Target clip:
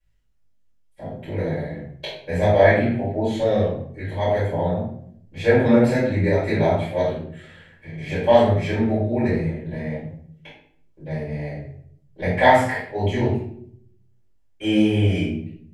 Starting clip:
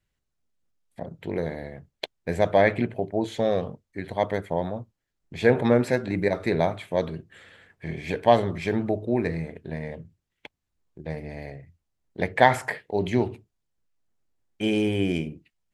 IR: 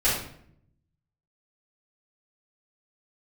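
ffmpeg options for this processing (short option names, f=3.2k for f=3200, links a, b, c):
-filter_complex "[0:a]asettb=1/sr,asplit=3[a][b][c];[a]atrim=end=7.124[d];[b]atrim=start=7.12:end=7.98,asetpts=PTS-STARTPTS,afade=t=in:d=0.004:c=qsin,afade=t=out:st=0.856:d=0.004:c=qsin,acompressor=threshold=-41dB:ratio=2.5[e];[c]atrim=start=7.976[f];[d][e]acrossfade=d=0.004:c1=hsin:c2=qsin[g];[g][f]acrossfade=d=0.004:c1=qsin:c2=hsin,flanger=delay=19:depth=3.5:speed=2[h];[1:a]atrim=start_sample=2205,asetrate=48510,aresample=44100[i];[h][i]afir=irnorm=-1:irlink=0,volume=-6.5dB"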